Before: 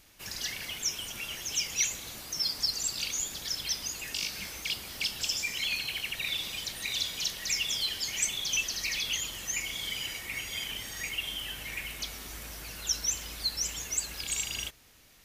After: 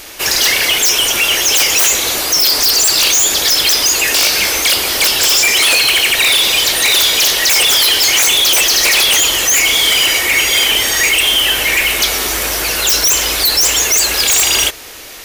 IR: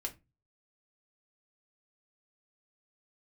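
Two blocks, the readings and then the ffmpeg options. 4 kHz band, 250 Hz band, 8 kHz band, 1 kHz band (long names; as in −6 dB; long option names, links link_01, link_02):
+22.0 dB, +21.0 dB, +21.0 dB, +27.0 dB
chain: -af "aeval=exprs='0.2*sin(PI/2*7.08*val(0)/0.2)':channel_layout=same,lowshelf=frequency=270:width_type=q:width=1.5:gain=-9.5,volume=6.5dB"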